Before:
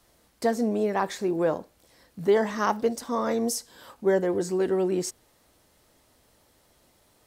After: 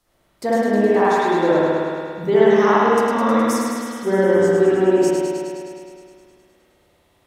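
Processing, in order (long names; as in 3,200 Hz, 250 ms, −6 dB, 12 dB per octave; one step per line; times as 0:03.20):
noise reduction from a noise print of the clip's start 7 dB
on a send: feedback echo with a high-pass in the loop 104 ms, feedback 74%, high-pass 400 Hz, level −5 dB
on the sum: spring reverb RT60 2.1 s, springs 58 ms, chirp 50 ms, DRR −9 dB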